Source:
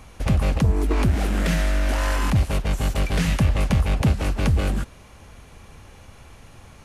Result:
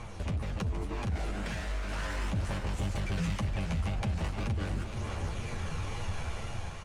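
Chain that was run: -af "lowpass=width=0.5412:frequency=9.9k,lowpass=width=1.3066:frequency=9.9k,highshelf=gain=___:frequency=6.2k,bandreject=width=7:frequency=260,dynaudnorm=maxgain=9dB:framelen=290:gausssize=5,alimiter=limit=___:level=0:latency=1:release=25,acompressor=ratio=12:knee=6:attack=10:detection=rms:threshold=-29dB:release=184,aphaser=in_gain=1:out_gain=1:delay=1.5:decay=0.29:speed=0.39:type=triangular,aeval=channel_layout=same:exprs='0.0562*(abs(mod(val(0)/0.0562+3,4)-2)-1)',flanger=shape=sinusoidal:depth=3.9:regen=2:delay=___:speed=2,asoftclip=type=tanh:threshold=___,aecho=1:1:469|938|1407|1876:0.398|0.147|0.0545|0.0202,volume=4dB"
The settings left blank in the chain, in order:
-3.5, -14dB, 8.4, -29dB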